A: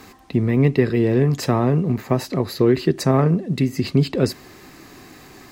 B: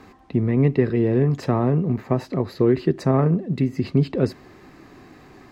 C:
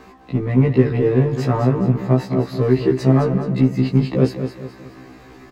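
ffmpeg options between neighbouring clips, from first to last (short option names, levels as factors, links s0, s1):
-af "lowpass=f=1600:p=1,volume=0.841"
-filter_complex "[0:a]asplit=2[s0][s1];[s1]asoftclip=type=hard:threshold=0.112,volume=0.422[s2];[s0][s2]amix=inputs=2:normalize=0,aecho=1:1:212|424|636|848|1060:0.355|0.145|0.0596|0.0245|0.01,afftfilt=real='re*1.73*eq(mod(b,3),0)':imag='im*1.73*eq(mod(b,3),0)':win_size=2048:overlap=0.75,volume=1.41"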